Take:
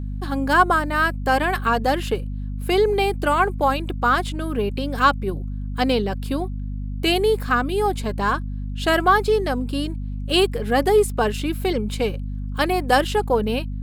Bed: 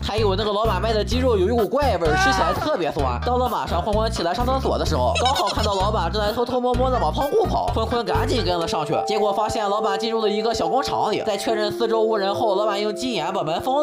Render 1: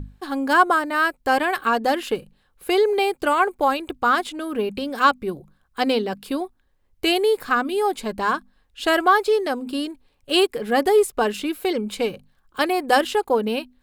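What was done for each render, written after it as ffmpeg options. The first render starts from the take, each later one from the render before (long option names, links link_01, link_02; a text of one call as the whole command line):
ffmpeg -i in.wav -af "bandreject=frequency=50:width_type=h:width=6,bandreject=frequency=100:width_type=h:width=6,bandreject=frequency=150:width_type=h:width=6,bandreject=frequency=200:width_type=h:width=6,bandreject=frequency=250:width_type=h:width=6" out.wav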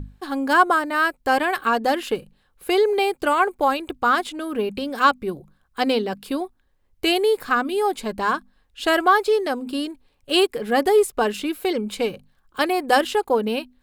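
ffmpeg -i in.wav -af anull out.wav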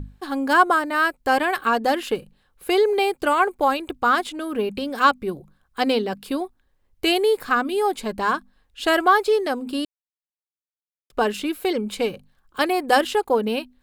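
ffmpeg -i in.wav -filter_complex "[0:a]asplit=3[link_01][link_02][link_03];[link_01]atrim=end=9.85,asetpts=PTS-STARTPTS,afade=type=out:start_time=9.846:duration=0.004:curve=hsin[link_04];[link_02]atrim=start=9.85:end=11.1,asetpts=PTS-STARTPTS,volume=0[link_05];[link_03]atrim=start=11.1,asetpts=PTS-STARTPTS,afade=type=in:duration=0.004:curve=hsin[link_06];[link_04][link_05][link_06]concat=n=3:v=0:a=1" out.wav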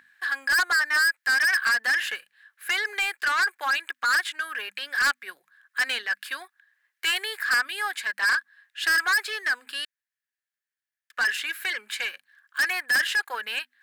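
ffmpeg -i in.wav -af "highpass=frequency=1700:width_type=q:width=8.7,asoftclip=type=tanh:threshold=-19.5dB" out.wav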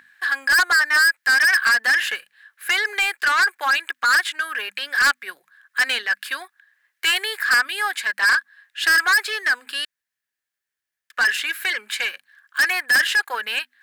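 ffmpeg -i in.wav -af "volume=5.5dB" out.wav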